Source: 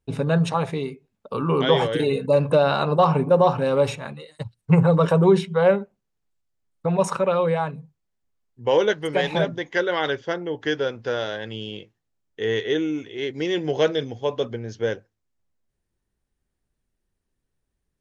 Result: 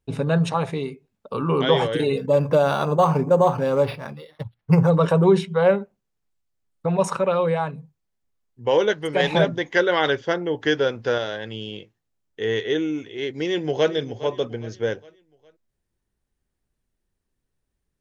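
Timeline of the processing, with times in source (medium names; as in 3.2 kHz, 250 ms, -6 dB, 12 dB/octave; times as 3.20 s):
2.17–4.90 s: decimation joined by straight lines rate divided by 6×
9.20–11.18 s: gain +3.5 dB
13.43–13.92 s: echo throw 410 ms, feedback 45%, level -15.5 dB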